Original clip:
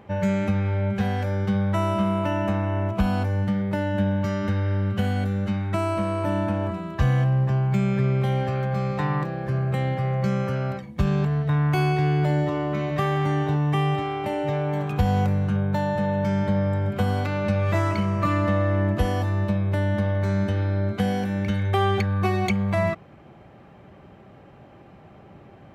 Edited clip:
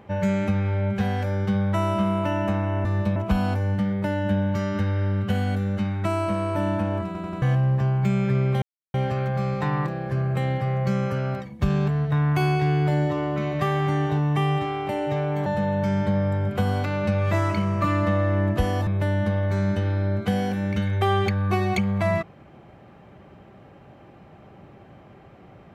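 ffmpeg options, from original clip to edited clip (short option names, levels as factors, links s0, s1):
-filter_complex "[0:a]asplit=10[s0][s1][s2][s3][s4][s5][s6][s7][s8][s9];[s0]atrim=end=2.852[s10];[s1]atrim=start=19.278:end=19.592[s11];[s2]atrim=start=2.848:end=6.842[s12];[s3]atrim=start=6.748:end=6.842[s13];[s4]atrim=start=6.748:end=6.842[s14];[s5]atrim=start=6.748:end=6.842[s15];[s6]atrim=start=7.108:end=8.31,asetpts=PTS-STARTPTS,afade=t=out:st=1.198:d=0.004:c=hsin,apad=pad_dur=0.32[s16];[s7]atrim=start=8.31:end=14.832,asetpts=PTS-STARTPTS,afade=t=in:d=0.004:c=hsin[s17];[s8]atrim=start=15.868:end=19.282[s18];[s9]atrim=start=19.588[s19];[s10][s11]acrossfade=d=0.004:c1=hsin:c2=hsin[s20];[s20][s12]acrossfade=d=0.004:c1=hsin:c2=hsin[s21];[s21][s13]acrossfade=d=0.004:c1=hsin:c2=hsin[s22];[s22][s14]acrossfade=d=0.004:c1=hsin:c2=hsin[s23];[s23][s15]acrossfade=d=0.004:c1=hsin:c2=hsin[s24];[s16][s17]concat=n=2:v=0:a=1[s25];[s24][s25]acrossfade=d=0.004:c1=hsin:c2=hsin[s26];[s26][s18]acrossfade=d=0.004:c1=hsin:c2=hsin[s27];[s27][s19]acrossfade=d=0.004:c1=hsin:c2=hsin"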